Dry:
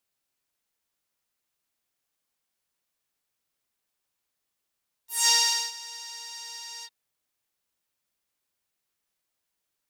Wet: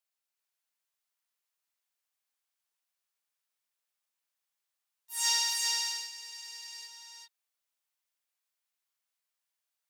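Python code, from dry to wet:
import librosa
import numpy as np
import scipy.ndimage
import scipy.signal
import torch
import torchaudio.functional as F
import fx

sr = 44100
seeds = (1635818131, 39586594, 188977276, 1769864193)

y = scipy.signal.sosfilt(scipy.signal.butter(2, 710.0, 'highpass', fs=sr, output='sos'), x)
y = fx.quant_float(y, sr, bits=8)
y = y + 10.0 ** (-3.0 / 20.0) * np.pad(y, (int(390 * sr / 1000.0), 0))[:len(y)]
y = y * librosa.db_to_amplitude(-6.5)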